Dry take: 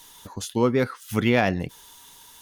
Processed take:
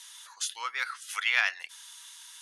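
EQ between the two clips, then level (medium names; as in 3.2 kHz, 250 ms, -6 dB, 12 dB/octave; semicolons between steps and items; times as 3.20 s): high-pass 1.3 kHz 24 dB/octave; steep low-pass 11 kHz 48 dB/octave; +2.0 dB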